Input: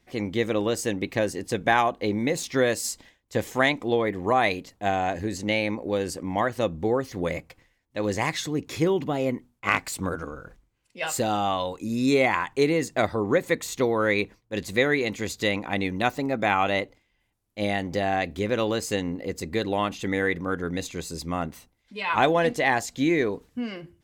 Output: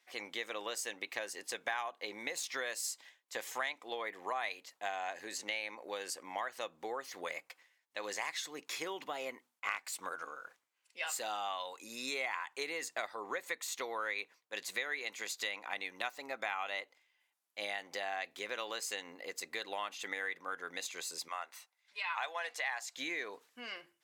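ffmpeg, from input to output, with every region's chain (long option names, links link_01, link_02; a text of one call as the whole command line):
ffmpeg -i in.wav -filter_complex "[0:a]asettb=1/sr,asplit=3[link_01][link_02][link_03];[link_01]atrim=end=21.284[link_04];[link_02]atrim=start=21.28:end=22.96,asetpts=PTS-STARTPTS,afade=type=in:duration=0.004:curve=qsin,afade=type=out:start_time=1.676:duration=0.004:curve=qsin,highpass=690,highshelf=frequency=9700:gain=-5.5,bandreject=frequency=3100:width=19[link_05];[link_03]atrim=start=22.956[link_06];[link_04][link_05]acrossfade=duration=0.004:curve1=hsin:curve2=qsin[link_07];[link_07][link_06]acrossfade=duration=0.004:curve1=qsin:curve2=hsin,highpass=920,acompressor=threshold=-35dB:ratio=3,volume=-2dB" out.wav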